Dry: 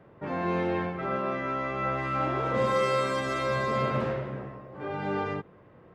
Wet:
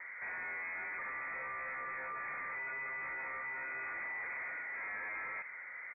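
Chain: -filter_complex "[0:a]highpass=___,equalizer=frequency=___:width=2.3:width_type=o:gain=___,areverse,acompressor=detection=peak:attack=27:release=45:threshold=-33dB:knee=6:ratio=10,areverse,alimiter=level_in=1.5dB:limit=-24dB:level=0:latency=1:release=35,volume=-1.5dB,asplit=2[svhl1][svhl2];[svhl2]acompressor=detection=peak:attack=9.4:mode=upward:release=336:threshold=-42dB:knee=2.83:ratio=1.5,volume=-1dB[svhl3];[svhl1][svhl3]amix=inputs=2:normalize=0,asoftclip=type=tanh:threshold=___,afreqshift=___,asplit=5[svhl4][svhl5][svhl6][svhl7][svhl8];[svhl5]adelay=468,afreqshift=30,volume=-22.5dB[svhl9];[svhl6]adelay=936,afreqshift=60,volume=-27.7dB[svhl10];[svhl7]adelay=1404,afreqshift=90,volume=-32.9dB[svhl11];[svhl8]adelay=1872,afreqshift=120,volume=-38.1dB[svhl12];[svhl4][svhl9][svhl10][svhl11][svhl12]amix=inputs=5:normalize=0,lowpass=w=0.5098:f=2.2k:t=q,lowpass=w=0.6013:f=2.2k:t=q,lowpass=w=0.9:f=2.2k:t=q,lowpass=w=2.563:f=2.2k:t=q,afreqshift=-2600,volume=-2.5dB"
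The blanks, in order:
300, 590, 9.5, -37.5dB, 87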